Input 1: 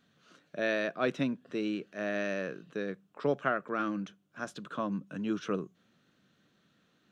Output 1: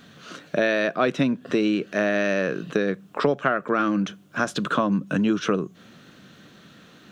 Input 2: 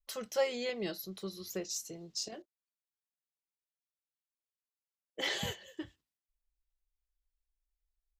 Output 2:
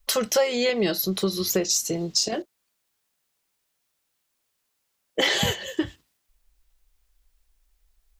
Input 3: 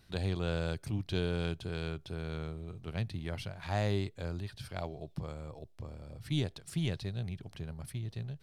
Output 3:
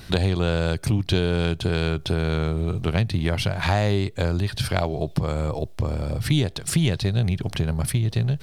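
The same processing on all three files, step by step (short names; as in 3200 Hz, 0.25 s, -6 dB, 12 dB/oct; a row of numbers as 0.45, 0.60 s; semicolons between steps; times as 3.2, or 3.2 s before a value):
compressor 4:1, threshold -40 dBFS; match loudness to -24 LUFS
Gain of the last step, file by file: +20.0, +20.0, +21.0 dB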